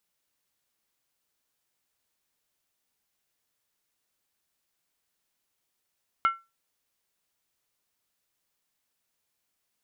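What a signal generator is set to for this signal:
struck skin, lowest mode 1,350 Hz, decay 0.24 s, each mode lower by 10 dB, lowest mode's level −16 dB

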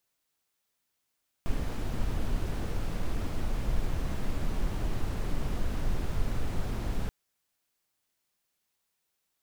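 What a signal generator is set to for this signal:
noise brown, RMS −28 dBFS 5.63 s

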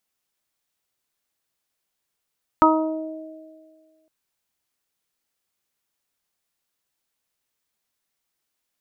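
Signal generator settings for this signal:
harmonic partials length 1.46 s, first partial 316 Hz, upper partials −4/3.5/3 dB, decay 1.72 s, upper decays 1.96/0.56/0.44 s, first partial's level −15.5 dB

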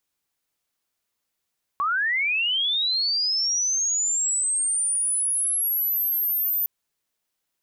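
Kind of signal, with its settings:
glide linear 1,100 Hz → 14,000 Hz −20.5 dBFS → −21 dBFS 4.86 s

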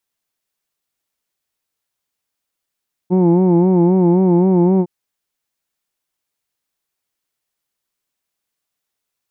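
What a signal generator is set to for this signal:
vowel by formant synthesis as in who'd, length 1.76 s, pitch 177 Hz, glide +0.5 semitones, vibrato 3.8 Hz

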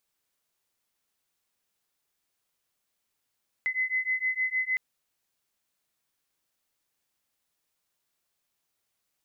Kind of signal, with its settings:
two tones that beat 2,030 Hz, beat 6.5 Hz, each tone −29 dBFS 1.11 s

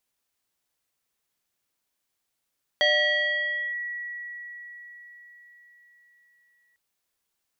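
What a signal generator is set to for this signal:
two-operator FM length 3.95 s, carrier 1,930 Hz, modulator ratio 0.69, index 1.3, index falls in 0.94 s linear, decay 4.92 s, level −17 dB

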